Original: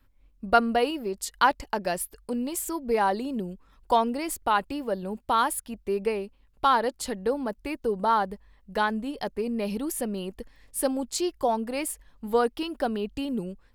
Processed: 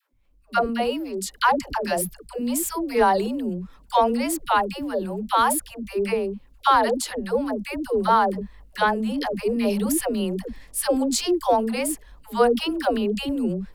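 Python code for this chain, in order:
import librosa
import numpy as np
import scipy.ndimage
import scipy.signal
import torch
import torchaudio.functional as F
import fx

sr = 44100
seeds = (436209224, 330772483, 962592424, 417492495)

y = fx.dispersion(x, sr, late='lows', ms=123.0, hz=450.0)
y = fx.transient(y, sr, attack_db=-1, sustain_db=4)
y = fx.rider(y, sr, range_db=10, speed_s=2.0)
y = F.gain(torch.from_numpy(y), 3.0).numpy()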